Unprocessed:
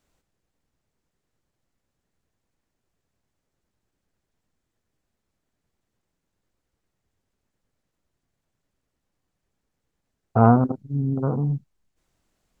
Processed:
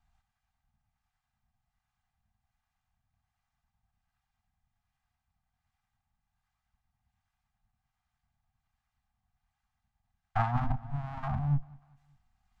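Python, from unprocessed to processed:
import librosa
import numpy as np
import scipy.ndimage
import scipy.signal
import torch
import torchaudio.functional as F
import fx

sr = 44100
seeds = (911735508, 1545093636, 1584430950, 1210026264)

p1 = fx.lower_of_two(x, sr, delay_ms=2.5)
p2 = scipy.signal.sosfilt(scipy.signal.ellip(3, 1.0, 40, [220.0, 730.0], 'bandstop', fs=sr, output='sos'), p1)
p3 = p2 + fx.echo_feedback(p2, sr, ms=195, feedback_pct=44, wet_db=-22.0, dry=0)
p4 = fx.harmonic_tremolo(p3, sr, hz=1.3, depth_pct=50, crossover_hz=740.0)
p5 = fx.lowpass(p4, sr, hz=1500.0, slope=6)
p6 = fx.over_compress(p5, sr, threshold_db=-29.0, ratio=-0.5)
y = F.gain(torch.from_numpy(p6), 4.0).numpy()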